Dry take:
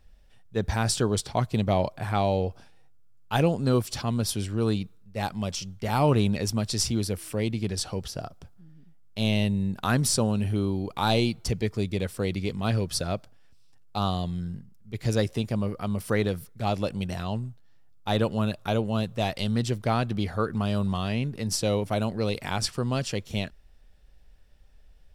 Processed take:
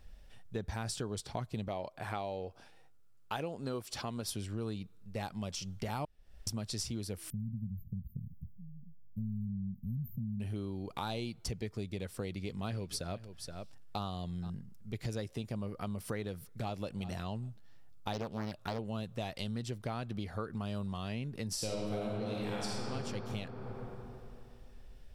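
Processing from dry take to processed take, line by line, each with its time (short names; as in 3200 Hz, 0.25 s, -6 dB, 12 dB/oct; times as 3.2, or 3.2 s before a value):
1.68–4.28 tone controls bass -8 dB, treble -2 dB
6.05–6.47 room tone
7.3–10.4 brick-wall FIR band-stop 240–13000 Hz
12.22–14.5 echo 0.473 s -18 dB
16.24–16.82 echo throw 0.38 s, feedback 10%, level -16.5 dB
18.13–18.79 Doppler distortion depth 0.64 ms
21.53–22.84 reverb throw, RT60 2.6 s, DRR -5.5 dB
whole clip: compressor 5:1, threshold -39 dBFS; gain +2 dB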